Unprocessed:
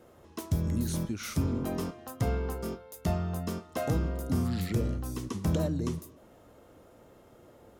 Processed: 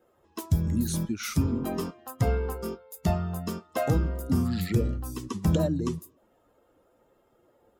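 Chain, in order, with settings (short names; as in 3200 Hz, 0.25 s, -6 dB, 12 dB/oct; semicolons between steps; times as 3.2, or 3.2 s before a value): per-bin expansion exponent 1.5; gain +6.5 dB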